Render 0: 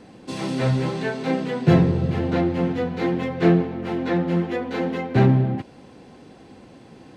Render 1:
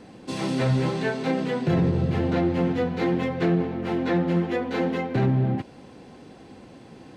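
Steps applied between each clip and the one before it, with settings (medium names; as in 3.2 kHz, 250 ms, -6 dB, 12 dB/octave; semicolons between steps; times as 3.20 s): peak limiter -14 dBFS, peak gain reduction 9.5 dB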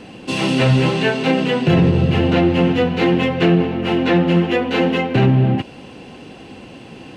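peaking EQ 2.8 kHz +12.5 dB 0.33 oct; trim +8 dB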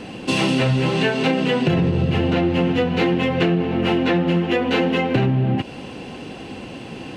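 compression, threshold -19 dBFS, peak gain reduction 9 dB; trim +3.5 dB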